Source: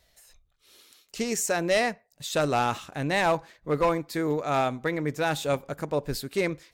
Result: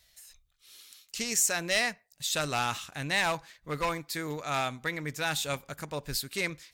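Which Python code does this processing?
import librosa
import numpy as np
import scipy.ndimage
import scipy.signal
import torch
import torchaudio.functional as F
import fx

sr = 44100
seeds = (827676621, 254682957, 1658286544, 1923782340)

p1 = fx.tone_stack(x, sr, knobs='5-5-5')
p2 = np.clip(10.0 ** (28.5 / 20.0) * p1, -1.0, 1.0) / 10.0 ** (28.5 / 20.0)
p3 = p1 + (p2 * librosa.db_to_amplitude(-6.0))
y = p3 * librosa.db_to_amplitude(6.5)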